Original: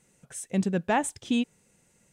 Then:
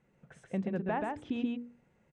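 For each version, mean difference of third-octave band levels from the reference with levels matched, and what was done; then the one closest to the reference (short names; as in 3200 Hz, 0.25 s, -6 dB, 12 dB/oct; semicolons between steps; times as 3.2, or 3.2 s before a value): 8.0 dB: LPF 1900 Hz 12 dB/oct; notches 60/120/180/240/300/360/420/480 Hz; compressor 4:1, threshold -28 dBFS, peak gain reduction 7 dB; on a send: echo 0.131 s -3 dB; on the sum: gain -2.5 dB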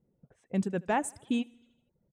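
4.0 dB: low-pass opened by the level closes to 450 Hz, open at -25 dBFS; feedback echo 77 ms, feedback 57%, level -14 dB; dynamic EQ 4500 Hz, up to -5 dB, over -50 dBFS, Q 0.86; reverb removal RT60 0.61 s; gain -3 dB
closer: second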